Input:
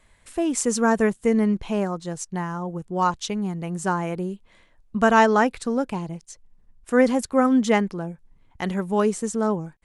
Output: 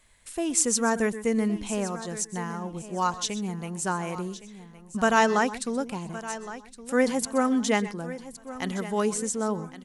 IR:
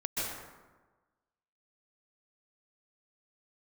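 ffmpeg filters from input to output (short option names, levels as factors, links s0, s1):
-filter_complex "[0:a]highshelf=f=3000:g=10.5,aecho=1:1:1115|2230|3345:0.178|0.0587|0.0194,asplit=2[s0][s1];[1:a]atrim=start_sample=2205,afade=t=out:st=0.18:d=0.01,atrim=end_sample=8379[s2];[s1][s2]afir=irnorm=-1:irlink=0,volume=0.316[s3];[s0][s3]amix=inputs=2:normalize=0,volume=0.422"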